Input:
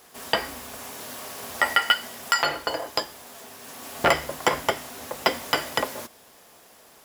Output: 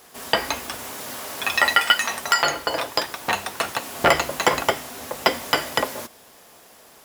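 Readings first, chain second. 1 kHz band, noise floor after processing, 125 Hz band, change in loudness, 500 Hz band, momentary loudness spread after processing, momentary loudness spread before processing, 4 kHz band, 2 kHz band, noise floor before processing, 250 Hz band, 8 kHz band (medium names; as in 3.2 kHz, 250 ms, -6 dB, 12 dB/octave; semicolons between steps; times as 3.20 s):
+4.0 dB, -50 dBFS, +3.5 dB, +3.5 dB, +3.5 dB, 14 LU, 16 LU, +4.0 dB, +4.5 dB, -53 dBFS, +3.5 dB, +5.5 dB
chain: ever faster or slower copies 255 ms, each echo +5 st, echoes 2, each echo -6 dB; trim +3 dB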